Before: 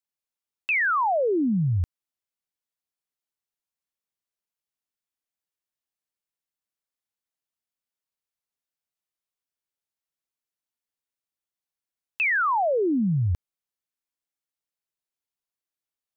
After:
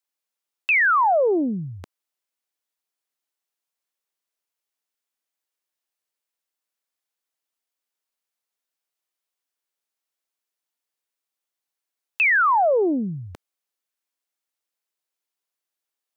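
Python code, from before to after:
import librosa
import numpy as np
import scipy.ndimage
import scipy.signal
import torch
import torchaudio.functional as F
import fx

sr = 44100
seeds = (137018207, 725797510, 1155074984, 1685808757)

y = scipy.signal.sosfilt(scipy.signal.butter(2, 310.0, 'highpass', fs=sr, output='sos'), x)
y = fx.doppler_dist(y, sr, depth_ms=0.2)
y = y * librosa.db_to_amplitude(5.0)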